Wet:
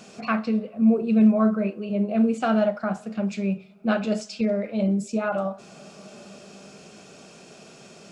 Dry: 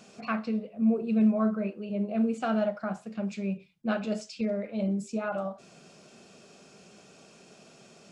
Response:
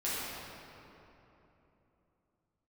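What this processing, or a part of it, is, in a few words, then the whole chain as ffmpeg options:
ducked reverb: -filter_complex "[0:a]asplit=3[link_01][link_02][link_03];[1:a]atrim=start_sample=2205[link_04];[link_02][link_04]afir=irnorm=-1:irlink=0[link_05];[link_03]apad=whole_len=357750[link_06];[link_05][link_06]sidechaincompress=threshold=-45dB:ratio=8:attack=9.6:release=696,volume=-17dB[link_07];[link_01][link_07]amix=inputs=2:normalize=0,volume=6dB"

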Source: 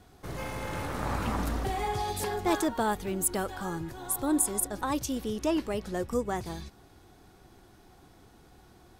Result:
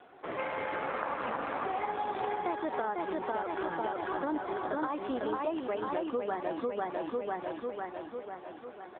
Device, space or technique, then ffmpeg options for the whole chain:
voicemail: -filter_complex "[0:a]asettb=1/sr,asplit=3[link_01][link_02][link_03];[link_01]atrim=end=3.234[link_04];[link_02]atrim=start=3.23:end=3.79,asetpts=PTS-STARTPTS,afade=type=in:duration=0.004:curve=qsin,afade=type=out:start_time=0.556:duration=0.004:curve=qsin,aemphasis=mode=production:type=50fm[link_05];[link_03]atrim=start=3.786[link_06];[link_04][link_05]acrossfade=duration=0.004:curve1=hsin:curve2=qsin[link_07];[link_07][link_06]acrossfade=duration=0.004:curve1=qsin:curve2=hsin,highpass=410,lowpass=2600,aecho=1:1:498|996|1494|1992|2490|2988|3486|3984:0.708|0.411|0.238|0.138|0.0801|0.0465|0.027|0.0156,acompressor=threshold=-37dB:ratio=12,volume=8.5dB" -ar 8000 -c:a libopencore_amrnb -b:a 7400

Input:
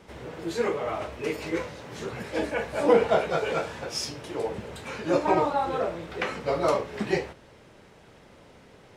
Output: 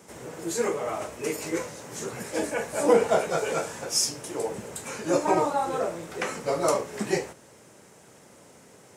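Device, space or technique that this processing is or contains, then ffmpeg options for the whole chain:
budget condenser microphone: -af "highpass=120,highshelf=frequency=5300:width_type=q:width=1.5:gain=11.5"

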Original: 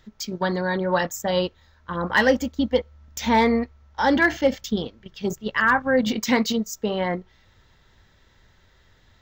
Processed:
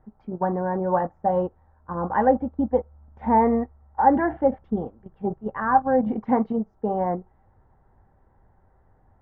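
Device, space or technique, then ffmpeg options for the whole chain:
under water: -filter_complex "[0:a]lowpass=frequency=1200:width=0.5412,lowpass=frequency=1200:width=1.3066,equalizer=frequency=780:width_type=o:width=0.21:gain=11,bandreject=frequency=1300:width=24,asettb=1/sr,asplit=3[link_01][link_02][link_03];[link_01]atrim=end=3.224[link_04];[link_02]atrim=start=3.22:end=4.22,asetpts=PTS-STARTPTS,afade=type=in:duration=0.004:curve=qsin,afade=type=out:start_time=0.996:duration=0.004:curve=qsin,equalizer=frequency=1900:width_type=o:width=0.25:gain=7.5[link_05];[link_03]atrim=start=4.216[link_06];[link_04][link_05]acrossfade=duration=0.004:curve1=hsin:curve2=qsin[link_07];[link_07][link_06]acrossfade=duration=0.004:curve1=qsin:curve2=hsin,volume=-1dB"

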